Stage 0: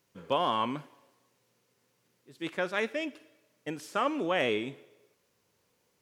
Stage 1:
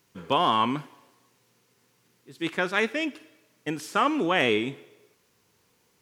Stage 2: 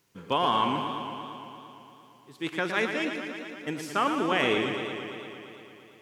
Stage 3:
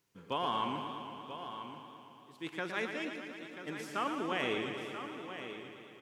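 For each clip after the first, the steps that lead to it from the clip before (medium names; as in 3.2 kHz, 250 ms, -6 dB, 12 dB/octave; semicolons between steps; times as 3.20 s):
peaking EQ 570 Hz -7 dB 0.4 oct; trim +7 dB
modulated delay 114 ms, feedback 78%, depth 87 cents, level -7.5 dB; trim -3 dB
delay 985 ms -10.5 dB; trim -9 dB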